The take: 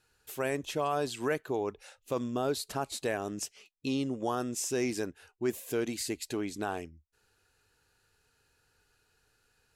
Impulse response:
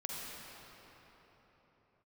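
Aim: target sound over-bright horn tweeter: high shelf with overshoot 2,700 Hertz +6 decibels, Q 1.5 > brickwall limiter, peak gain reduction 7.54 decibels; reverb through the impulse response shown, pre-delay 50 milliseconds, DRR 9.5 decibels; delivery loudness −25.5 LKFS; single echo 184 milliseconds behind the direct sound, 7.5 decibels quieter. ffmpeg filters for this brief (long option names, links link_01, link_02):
-filter_complex "[0:a]aecho=1:1:184:0.422,asplit=2[link_01][link_02];[1:a]atrim=start_sample=2205,adelay=50[link_03];[link_02][link_03]afir=irnorm=-1:irlink=0,volume=-11dB[link_04];[link_01][link_04]amix=inputs=2:normalize=0,highshelf=frequency=2700:width_type=q:width=1.5:gain=6,volume=8.5dB,alimiter=limit=-15dB:level=0:latency=1"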